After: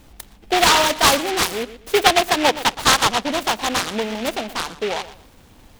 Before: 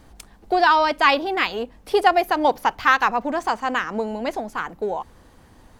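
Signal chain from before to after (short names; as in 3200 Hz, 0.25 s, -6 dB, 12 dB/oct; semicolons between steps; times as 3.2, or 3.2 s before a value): bell 10000 Hz +8.5 dB 0.88 oct; on a send: darkening echo 0.12 s, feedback 26%, low-pass 1700 Hz, level -14 dB; on the sum: noise-modulated delay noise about 2200 Hz, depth 0.14 ms; gain +1.5 dB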